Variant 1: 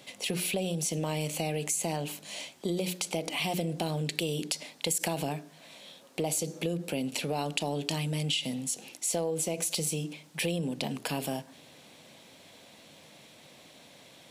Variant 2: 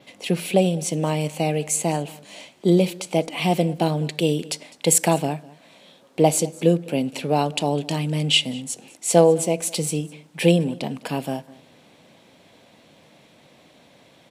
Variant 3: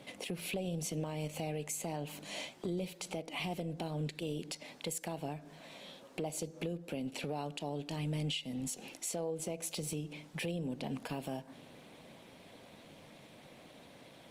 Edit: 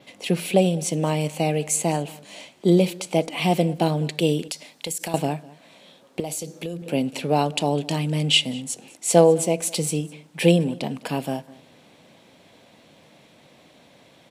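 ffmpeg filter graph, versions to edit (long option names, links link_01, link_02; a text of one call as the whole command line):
ffmpeg -i take0.wav -i take1.wav -filter_complex "[0:a]asplit=2[link_01][link_02];[1:a]asplit=3[link_03][link_04][link_05];[link_03]atrim=end=4.482[link_06];[link_01]atrim=start=4.478:end=5.142[link_07];[link_04]atrim=start=5.138:end=6.202[link_08];[link_02]atrim=start=6.198:end=6.822[link_09];[link_05]atrim=start=6.818[link_10];[link_06][link_07]acrossfade=duration=0.004:curve1=hsin:curve2=hsin[link_11];[link_11][link_08]acrossfade=duration=0.004:curve1=hsin:curve2=hsin[link_12];[link_12][link_09]acrossfade=duration=0.004:curve1=hsin:curve2=hsin[link_13];[link_13][link_10]acrossfade=duration=0.004:curve1=hsin:curve2=hsin" out.wav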